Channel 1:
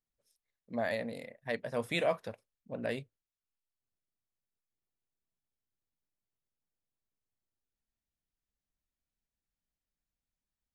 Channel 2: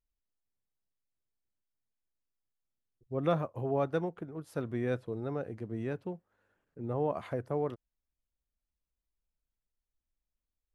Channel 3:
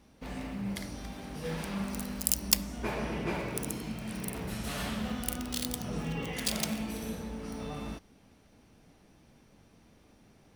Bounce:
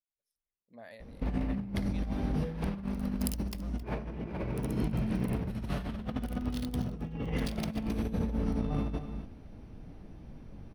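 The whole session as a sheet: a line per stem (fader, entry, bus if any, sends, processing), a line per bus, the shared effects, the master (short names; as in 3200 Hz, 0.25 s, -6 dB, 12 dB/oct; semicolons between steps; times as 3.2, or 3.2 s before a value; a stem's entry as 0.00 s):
-20.0 dB, 0.00 s, no send, no echo send, high shelf 5200 Hz +6 dB
-14.0 dB, 0.35 s, no send, no echo send, running maximum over 33 samples
0.0 dB, 1.00 s, no send, echo send -12.5 dB, tilt -3 dB/oct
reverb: off
echo: echo 0.267 s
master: bell 7400 Hz -8 dB 0.46 oct; negative-ratio compressor -32 dBFS, ratio -0.5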